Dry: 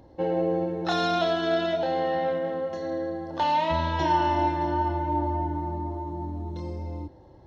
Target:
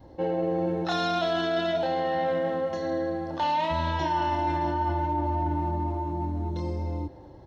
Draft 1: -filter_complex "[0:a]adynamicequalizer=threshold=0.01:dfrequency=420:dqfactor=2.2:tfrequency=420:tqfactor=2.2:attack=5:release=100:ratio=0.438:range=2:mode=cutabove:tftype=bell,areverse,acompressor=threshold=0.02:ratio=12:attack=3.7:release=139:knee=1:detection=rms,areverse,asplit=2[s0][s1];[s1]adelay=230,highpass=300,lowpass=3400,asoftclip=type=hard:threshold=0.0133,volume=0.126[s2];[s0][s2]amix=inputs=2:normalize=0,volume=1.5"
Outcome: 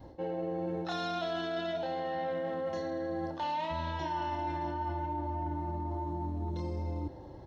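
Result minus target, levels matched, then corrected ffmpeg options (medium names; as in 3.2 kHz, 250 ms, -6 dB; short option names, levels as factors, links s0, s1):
compression: peak gain reduction +8 dB
-filter_complex "[0:a]adynamicequalizer=threshold=0.01:dfrequency=420:dqfactor=2.2:tfrequency=420:tqfactor=2.2:attack=5:release=100:ratio=0.438:range=2:mode=cutabove:tftype=bell,areverse,acompressor=threshold=0.0562:ratio=12:attack=3.7:release=139:knee=1:detection=rms,areverse,asplit=2[s0][s1];[s1]adelay=230,highpass=300,lowpass=3400,asoftclip=type=hard:threshold=0.0133,volume=0.126[s2];[s0][s2]amix=inputs=2:normalize=0,volume=1.5"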